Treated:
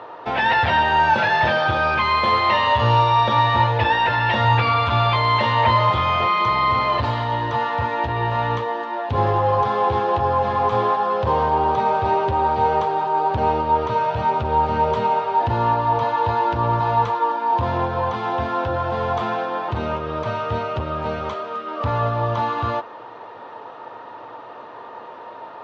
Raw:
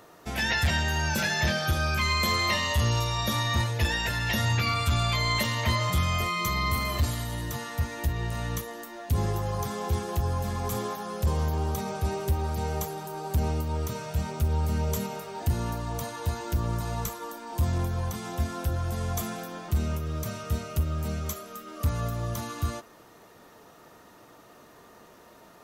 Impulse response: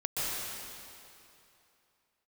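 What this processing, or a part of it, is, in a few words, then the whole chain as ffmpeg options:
overdrive pedal into a guitar cabinet: -filter_complex "[0:a]asplit=2[a][b];[b]highpass=f=720:p=1,volume=14dB,asoftclip=type=tanh:threshold=-17dB[c];[a][c]amix=inputs=2:normalize=0,lowpass=f=1.9k:p=1,volume=-6dB,highpass=110,equalizer=f=110:t=q:w=4:g=9,equalizer=f=180:t=q:w=4:g=-8,equalizer=f=510:t=q:w=4:g=5,equalizer=f=910:t=q:w=4:g=10,equalizer=f=2.1k:t=q:w=4:g=-4,lowpass=f=3.8k:w=0.5412,lowpass=f=3.8k:w=1.3066,volume=6.5dB"

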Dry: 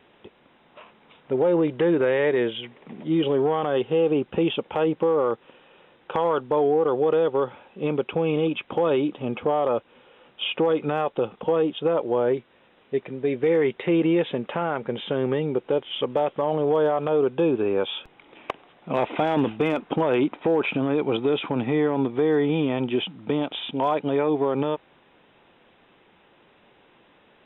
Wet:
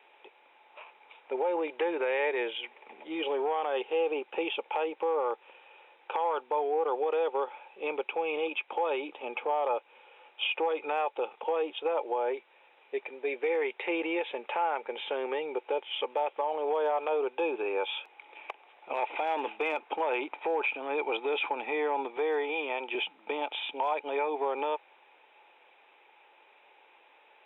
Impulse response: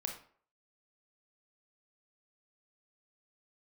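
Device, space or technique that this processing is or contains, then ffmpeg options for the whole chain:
laptop speaker: -filter_complex "[0:a]highpass=f=410:w=0.5412,highpass=f=410:w=1.3066,equalizer=f=860:t=o:w=0.21:g=11.5,equalizer=f=2.4k:t=o:w=0.29:g=11,alimiter=limit=-15dB:level=0:latency=1:release=255,asettb=1/sr,asplit=3[a][b][c];[a]atrim=end=22.174[d];[b]atrim=start=22.17:end=22.95,asetpts=PTS-STARTPTS,afade=t=in:d=0.004:c=qsin,afade=t=out:st=0.776:d=0.004:c=qsin,highpass=290[e];[c]atrim=start=22.946[f];[d][e]acrossfade=d=0.004:c1=hsin:c2=qsin[g];[g][f]acrossfade=d=0.004:c1=qsin:c2=hsin,volume=-5.5dB"

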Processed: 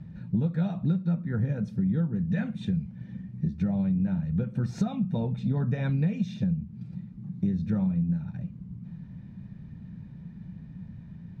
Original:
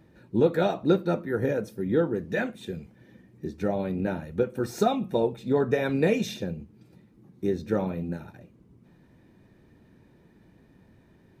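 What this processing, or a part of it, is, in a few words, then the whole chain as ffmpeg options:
jukebox: -af "lowpass=5.2k,lowshelf=f=250:t=q:w=3:g=12,acompressor=threshold=-25dB:ratio=5"

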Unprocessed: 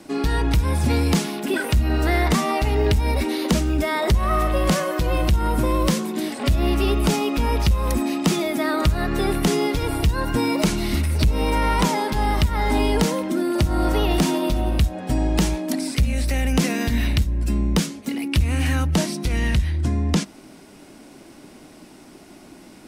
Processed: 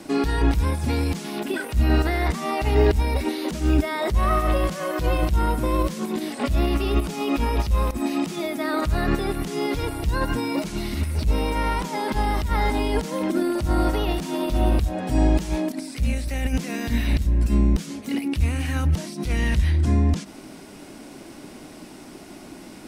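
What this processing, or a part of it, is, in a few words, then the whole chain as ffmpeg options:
de-esser from a sidechain: -filter_complex "[0:a]asplit=2[a][b];[b]highpass=6.7k,apad=whole_len=1008969[c];[a][c]sidechaincompress=threshold=-44dB:ratio=6:attack=0.59:release=55,volume=3.5dB"

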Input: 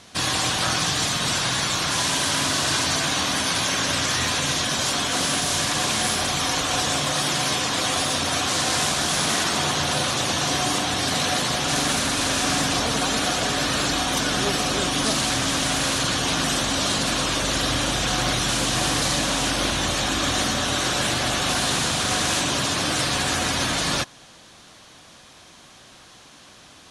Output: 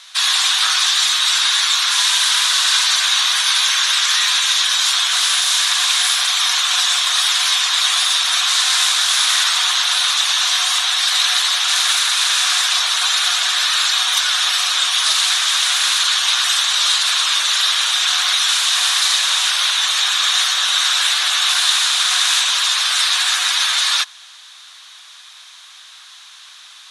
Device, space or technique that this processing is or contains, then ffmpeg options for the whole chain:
headphones lying on a table: -af "highpass=f=1.1k:w=0.5412,highpass=f=1.1k:w=1.3066,equalizer=f=3.7k:t=o:w=0.31:g=8,volume=6dB"

